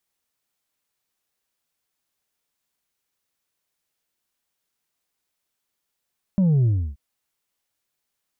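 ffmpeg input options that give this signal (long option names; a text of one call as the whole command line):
ffmpeg -f lavfi -i "aevalsrc='0.168*clip((0.58-t)/0.31,0,1)*tanh(1.41*sin(2*PI*200*0.58/log(65/200)*(exp(log(65/200)*t/0.58)-1)))/tanh(1.41)':duration=0.58:sample_rate=44100" out.wav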